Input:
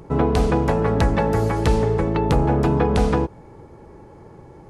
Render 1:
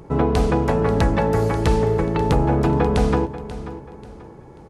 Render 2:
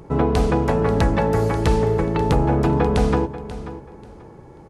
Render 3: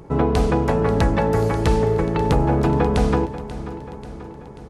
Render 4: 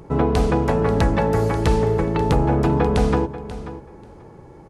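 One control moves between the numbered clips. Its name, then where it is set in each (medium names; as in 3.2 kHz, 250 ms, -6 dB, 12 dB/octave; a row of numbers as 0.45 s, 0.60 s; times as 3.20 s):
feedback delay, feedback: 34%, 23%, 58%, 15%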